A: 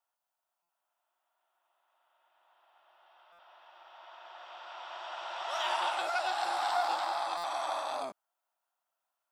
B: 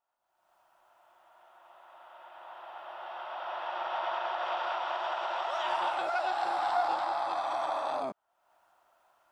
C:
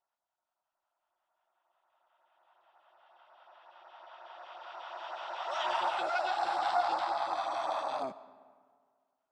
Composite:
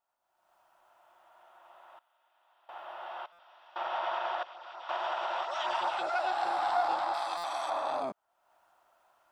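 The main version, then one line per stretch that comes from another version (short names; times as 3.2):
B
1.99–2.69 from A
3.26–3.76 from A
4.43–4.89 from C
5.45–6.11 from C
7.14–7.7 from A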